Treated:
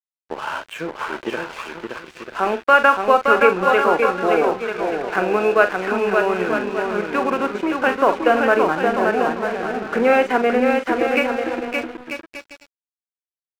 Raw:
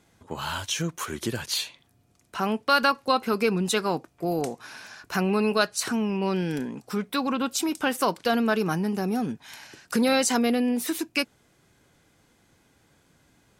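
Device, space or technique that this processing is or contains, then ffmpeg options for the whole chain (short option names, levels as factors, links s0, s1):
pocket radio on a weak battery: -filter_complex "[0:a]highpass=280,lowpass=3700,equalizer=f=550:t=o:w=2.3:g=11,highshelf=f=3300:t=q:w=3:g=-10,asplit=2[s0][s1];[s1]adelay=44,volume=0.316[s2];[s0][s2]amix=inputs=2:normalize=0,aecho=1:1:570|940.5|1181|1338|1440:0.631|0.398|0.251|0.158|0.1,aeval=exprs='sgn(val(0))*max(abs(val(0))-0.0224,0)':c=same,equalizer=f=1500:t=o:w=0.47:g=4,volume=0.891"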